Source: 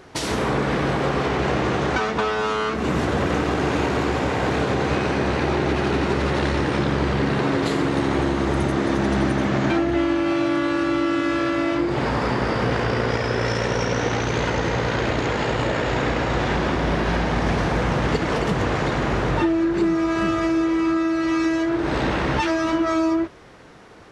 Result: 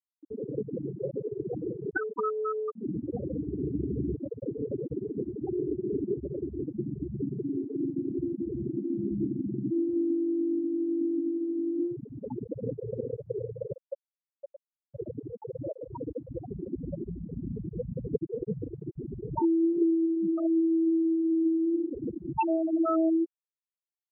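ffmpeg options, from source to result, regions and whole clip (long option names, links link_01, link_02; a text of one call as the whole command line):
ffmpeg -i in.wav -filter_complex "[0:a]asettb=1/sr,asplit=3[link_01][link_02][link_03];[link_01]atrim=end=3.104[link_04];[link_02]atrim=start=3.1:end=4.15,asetpts=PTS-STARTPTS,afade=type=in:duration=0.004:curve=qsin,afade=type=out:start_time=1.046:duration=0.004:curve=qsin,lowpass=frequency=1700:poles=1,asubboost=boost=6:cutoff=240[link_05];[link_03]atrim=start=4.146[link_06];[link_04][link_05]acrossfade=duration=0.004:curve1=hsin:curve2=qsin[link_07];[link_07][link_06]acrossfade=duration=0.004:curve1=qsin:curve2=hsin,asettb=1/sr,asplit=3[link_08][link_09][link_10];[link_08]atrim=end=6.644[link_11];[link_09]atrim=start=6.64:end=12.14,asetpts=PTS-STARTPTS,afade=type=in:duration=0.004:curve=qsin,afade=type=out:start_time=5.496:duration=0.004:curve=qsin,equalizer=frequency=1100:width_type=o:width=2.4:gain=-4.5,acrusher=bits=7:mode=log:mix=0:aa=0.000001,asplit=4[link_12][link_13][link_14][link_15];[link_13]adelay=261,afreqshift=-83,volume=-21dB[link_16];[link_14]adelay=522,afreqshift=-166,volume=-29.9dB[link_17];[link_15]adelay=783,afreqshift=-249,volume=-38.7dB[link_18];[link_12][link_16][link_17][link_18]amix=inputs=4:normalize=0,atrim=end_sample=242550[link_19];[link_10]atrim=start=12.136[link_20];[link_11][link_19]acrossfade=duration=0.004:curve1=hsin:curve2=qsin[link_21];[link_21][link_20]acrossfade=duration=0.004:curve1=qsin:curve2=hsin,asettb=1/sr,asplit=3[link_22][link_23][link_24];[link_22]atrim=end=13.744[link_25];[link_23]atrim=start=13.74:end=14.94,asetpts=PTS-STARTPTS,afade=type=in:duration=0.004:curve=qsin,afade=type=out:start_time=1.196:duration=0.004:curve=qsin,asplit=3[link_26][link_27][link_28];[link_26]bandpass=frequency=530:width_type=q:width=8,volume=0dB[link_29];[link_27]bandpass=frequency=1840:width_type=q:width=8,volume=-6dB[link_30];[link_28]bandpass=frequency=2480:width_type=q:width=8,volume=-9dB[link_31];[link_29][link_30][link_31]amix=inputs=3:normalize=0,lowshelf=frequency=170:gain=8,aecho=1:1:5:0.58,atrim=end_sample=52920[link_32];[link_24]atrim=start=14.936[link_33];[link_25][link_32]acrossfade=duration=0.004:curve1=hsin:curve2=qsin[link_34];[link_34][link_33]acrossfade=duration=0.004:curve1=qsin:curve2=hsin,afftfilt=real='re*gte(hypot(re,im),0.447)':imag='im*gte(hypot(re,im),0.447)':win_size=1024:overlap=0.75,highpass=frequency=410:poles=1" out.wav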